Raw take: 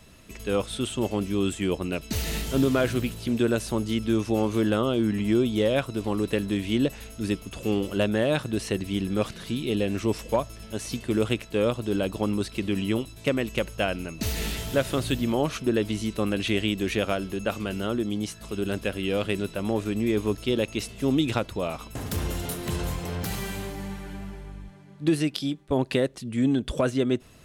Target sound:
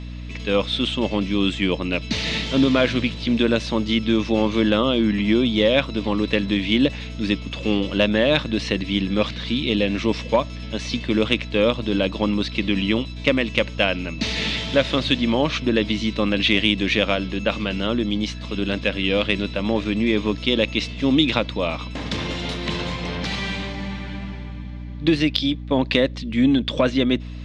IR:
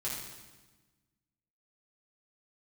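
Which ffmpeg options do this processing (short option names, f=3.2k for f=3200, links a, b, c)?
-af "highpass=200,equalizer=f=390:t=q:w=4:g=-9,equalizer=f=730:t=q:w=4:g=-6,equalizer=f=1.4k:t=q:w=4:g=-5,equalizer=f=2.2k:t=q:w=4:g=4,equalizer=f=3.6k:t=q:w=4:g=5,lowpass=f=5.1k:w=0.5412,lowpass=f=5.1k:w=1.3066,acontrast=51,aeval=exprs='val(0)+0.02*(sin(2*PI*60*n/s)+sin(2*PI*2*60*n/s)/2+sin(2*PI*3*60*n/s)/3+sin(2*PI*4*60*n/s)/4+sin(2*PI*5*60*n/s)/5)':c=same,volume=2.5dB"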